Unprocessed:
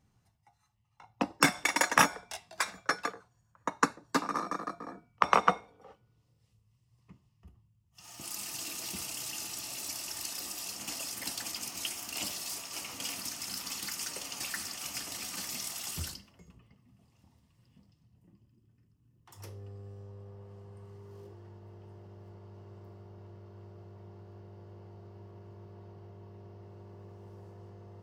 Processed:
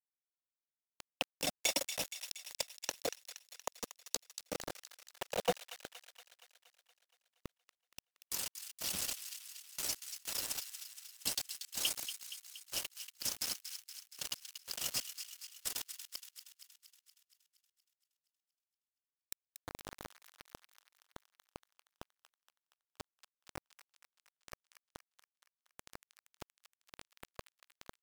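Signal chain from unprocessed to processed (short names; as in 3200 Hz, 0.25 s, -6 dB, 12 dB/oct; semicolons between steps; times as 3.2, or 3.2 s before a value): reverb removal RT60 0.77 s; EQ curve 180 Hz 0 dB, 370 Hz -2 dB, 560 Hz +11 dB, 1400 Hz -26 dB, 2900 Hz +7 dB, 5800 Hz +5 dB; sample leveller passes 3; step gate "xx....x.." 92 bpm -12 dB; flipped gate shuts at -44 dBFS, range -26 dB; bit-crush 8-bit; on a send: thin delay 0.235 s, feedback 61%, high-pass 1700 Hz, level -9 dB; on the sum: gain +12.5 dB; MP3 320 kbps 44100 Hz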